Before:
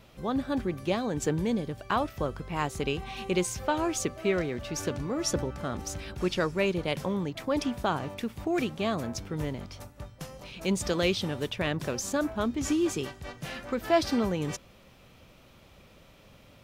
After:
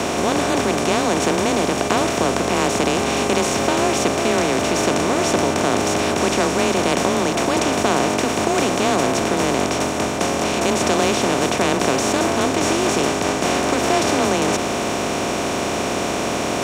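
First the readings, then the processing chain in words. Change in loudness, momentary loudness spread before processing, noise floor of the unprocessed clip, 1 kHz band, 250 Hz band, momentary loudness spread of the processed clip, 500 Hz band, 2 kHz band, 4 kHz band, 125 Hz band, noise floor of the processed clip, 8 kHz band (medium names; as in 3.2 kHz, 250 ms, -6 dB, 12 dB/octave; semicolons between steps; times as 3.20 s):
+11.5 dB, 9 LU, -56 dBFS, +15.0 dB, +10.0 dB, 4 LU, +12.5 dB, +14.0 dB, +14.0 dB, +7.5 dB, -22 dBFS, +15.0 dB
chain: spectral levelling over time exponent 0.2; frequency shift +25 Hz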